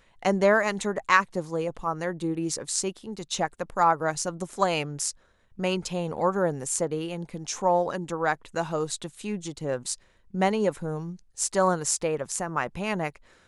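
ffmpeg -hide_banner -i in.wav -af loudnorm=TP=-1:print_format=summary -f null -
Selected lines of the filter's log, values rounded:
Input Integrated:    -27.5 LUFS
Input True Peak:      -4.6 dBTP
Input LRA:             2.5 LU
Input Threshold:     -37.7 LUFS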